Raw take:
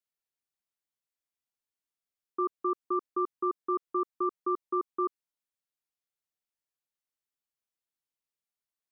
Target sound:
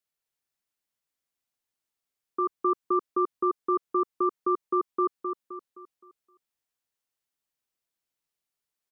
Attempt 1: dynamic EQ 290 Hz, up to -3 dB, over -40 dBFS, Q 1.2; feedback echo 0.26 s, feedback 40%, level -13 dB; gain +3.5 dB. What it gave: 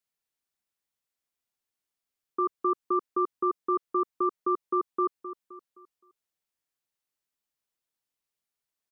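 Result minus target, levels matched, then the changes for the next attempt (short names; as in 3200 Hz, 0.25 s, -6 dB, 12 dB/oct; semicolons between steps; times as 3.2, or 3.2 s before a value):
echo-to-direct -7 dB
change: feedback echo 0.26 s, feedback 40%, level -6 dB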